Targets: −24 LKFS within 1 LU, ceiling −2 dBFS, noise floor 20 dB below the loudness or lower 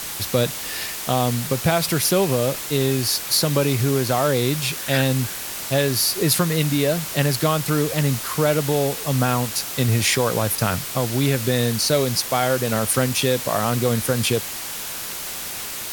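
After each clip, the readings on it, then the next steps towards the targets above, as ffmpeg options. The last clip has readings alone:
background noise floor −31 dBFS; target noise floor −41 dBFS; integrated loudness −20.5 LKFS; sample peak −4.5 dBFS; target loudness −24.0 LKFS
→ -af "afftdn=noise_reduction=10:noise_floor=-31"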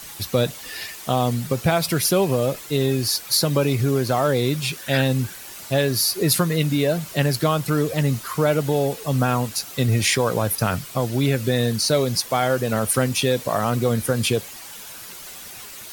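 background noise floor −38 dBFS; target noise floor −42 dBFS
→ -af "afftdn=noise_reduction=6:noise_floor=-38"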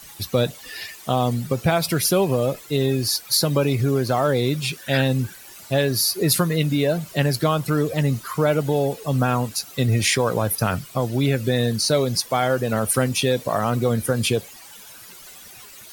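background noise floor −43 dBFS; integrated loudness −21.5 LKFS; sample peak −5.0 dBFS; target loudness −24.0 LKFS
→ -af "volume=-2.5dB"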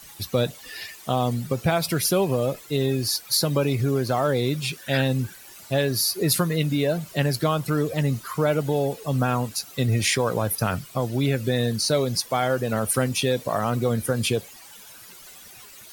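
integrated loudness −24.0 LKFS; sample peak −7.5 dBFS; background noise floor −46 dBFS

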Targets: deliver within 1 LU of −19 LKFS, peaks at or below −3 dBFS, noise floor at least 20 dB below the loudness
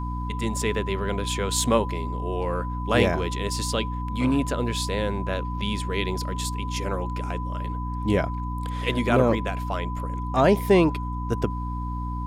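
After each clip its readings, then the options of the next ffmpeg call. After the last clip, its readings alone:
mains hum 60 Hz; hum harmonics up to 300 Hz; level of the hum −27 dBFS; interfering tone 1,000 Hz; level of the tone −34 dBFS; integrated loudness −25.5 LKFS; sample peak −5.5 dBFS; target loudness −19.0 LKFS
→ -af "bandreject=frequency=60:width_type=h:width=6,bandreject=frequency=120:width_type=h:width=6,bandreject=frequency=180:width_type=h:width=6,bandreject=frequency=240:width_type=h:width=6,bandreject=frequency=300:width_type=h:width=6"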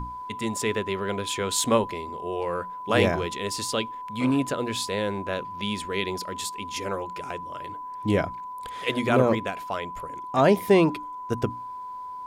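mains hum none found; interfering tone 1,000 Hz; level of the tone −34 dBFS
→ -af "bandreject=frequency=1000:width=30"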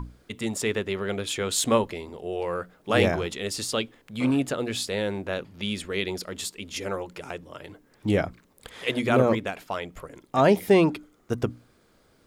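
interfering tone none found; integrated loudness −26.5 LKFS; sample peak −6.5 dBFS; target loudness −19.0 LKFS
→ -af "volume=7.5dB,alimiter=limit=-3dB:level=0:latency=1"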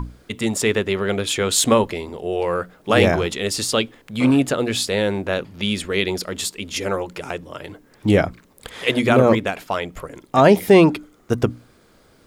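integrated loudness −19.5 LKFS; sample peak −3.0 dBFS; background noise floor −54 dBFS

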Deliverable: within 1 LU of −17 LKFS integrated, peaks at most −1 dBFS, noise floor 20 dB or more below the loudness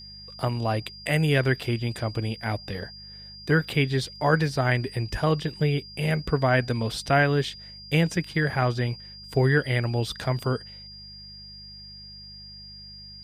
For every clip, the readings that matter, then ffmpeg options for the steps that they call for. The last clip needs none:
mains hum 50 Hz; hum harmonics up to 200 Hz; level of the hum −49 dBFS; interfering tone 4,800 Hz; level of the tone −42 dBFS; integrated loudness −25.5 LKFS; sample peak −8.0 dBFS; target loudness −17.0 LKFS
→ -af "bandreject=frequency=50:width_type=h:width=4,bandreject=frequency=100:width_type=h:width=4,bandreject=frequency=150:width_type=h:width=4,bandreject=frequency=200:width_type=h:width=4"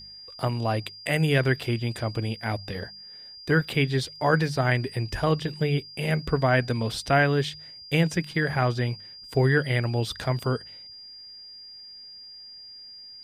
mains hum none found; interfering tone 4,800 Hz; level of the tone −42 dBFS
→ -af "bandreject=frequency=4800:width=30"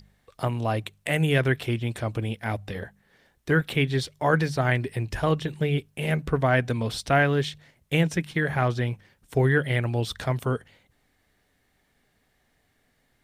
interfering tone none found; integrated loudness −26.0 LKFS; sample peak −8.0 dBFS; target loudness −17.0 LKFS
→ -af "volume=9dB,alimiter=limit=-1dB:level=0:latency=1"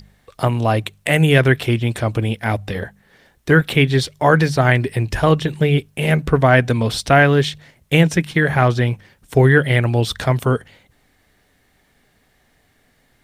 integrated loudness −17.0 LKFS; sample peak −1.0 dBFS; background noise floor −60 dBFS

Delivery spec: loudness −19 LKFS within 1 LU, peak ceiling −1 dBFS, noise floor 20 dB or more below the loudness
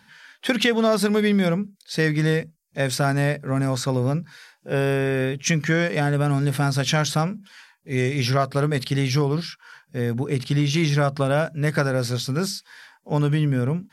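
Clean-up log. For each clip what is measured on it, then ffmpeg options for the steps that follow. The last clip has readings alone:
integrated loudness −22.5 LKFS; sample peak −5.0 dBFS; target loudness −19.0 LKFS
→ -af "volume=3.5dB"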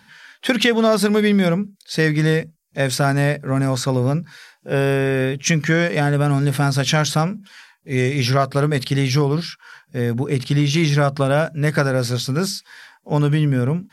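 integrated loudness −19.0 LKFS; sample peak −1.5 dBFS; background noise floor −58 dBFS

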